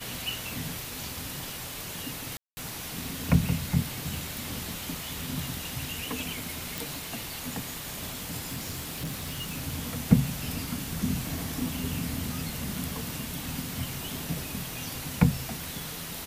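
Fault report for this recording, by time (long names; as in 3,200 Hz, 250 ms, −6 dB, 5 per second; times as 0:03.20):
0:02.37–0:02.57: drop-out 200 ms
0:06.78: click
0:08.44–0:09.56: clipping −29.5 dBFS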